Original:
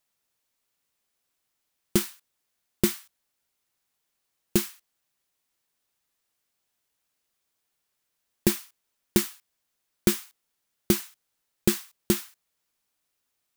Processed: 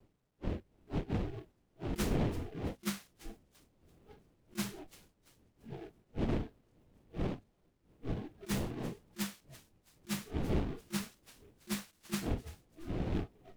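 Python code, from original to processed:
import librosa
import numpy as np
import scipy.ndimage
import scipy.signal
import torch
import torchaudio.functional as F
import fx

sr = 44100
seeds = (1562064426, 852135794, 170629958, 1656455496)

y = fx.dmg_wind(x, sr, seeds[0], corner_hz=330.0, level_db=-37.0)
y = scipy.signal.sosfilt(scipy.signal.butter(16, 9100.0, 'lowpass', fs=sr, output='sos'), y)
y = fx.hum_notches(y, sr, base_hz=50, count=5)
y = fx.over_compress(y, sr, threshold_db=-29.0, ratio=-0.5)
y = fx.low_shelf(y, sr, hz=160.0, db=5.0)
y = fx.echo_thinned(y, sr, ms=336, feedback_pct=42, hz=960.0, wet_db=-16.5)
y = fx.vibrato(y, sr, rate_hz=0.54, depth_cents=20.0)
y = fx.quant_dither(y, sr, seeds[1], bits=10, dither='none')
y = fx.noise_reduce_blind(y, sr, reduce_db=18)
y = fx.noise_mod_delay(y, sr, seeds[2], noise_hz=2000.0, depth_ms=0.055)
y = y * librosa.db_to_amplitude(-5.0)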